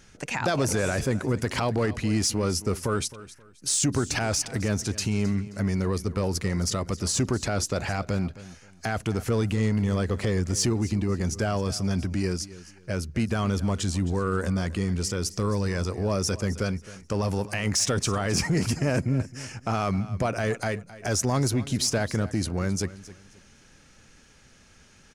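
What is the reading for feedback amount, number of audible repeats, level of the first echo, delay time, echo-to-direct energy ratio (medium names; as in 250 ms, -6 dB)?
28%, 2, -17.0 dB, 265 ms, -16.5 dB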